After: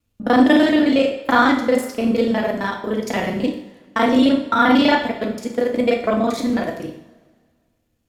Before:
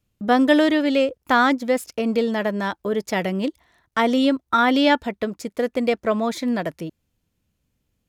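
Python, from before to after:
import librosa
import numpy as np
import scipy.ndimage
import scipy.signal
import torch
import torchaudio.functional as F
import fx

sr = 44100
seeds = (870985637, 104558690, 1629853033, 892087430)

y = fx.local_reverse(x, sr, ms=33.0)
y = fx.rev_double_slope(y, sr, seeds[0], early_s=0.62, late_s=1.9, knee_db=-18, drr_db=1.5)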